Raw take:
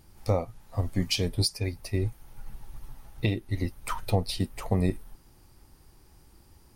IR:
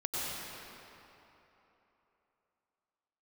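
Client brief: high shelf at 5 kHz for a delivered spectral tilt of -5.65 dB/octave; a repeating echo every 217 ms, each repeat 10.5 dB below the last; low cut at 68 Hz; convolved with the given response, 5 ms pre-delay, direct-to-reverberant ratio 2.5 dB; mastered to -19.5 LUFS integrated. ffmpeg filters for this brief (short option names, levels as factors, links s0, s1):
-filter_complex "[0:a]highpass=68,highshelf=f=5000:g=-3.5,aecho=1:1:217|434|651:0.299|0.0896|0.0269,asplit=2[s0][s1];[1:a]atrim=start_sample=2205,adelay=5[s2];[s1][s2]afir=irnorm=-1:irlink=0,volume=0.376[s3];[s0][s3]amix=inputs=2:normalize=0,volume=2.99"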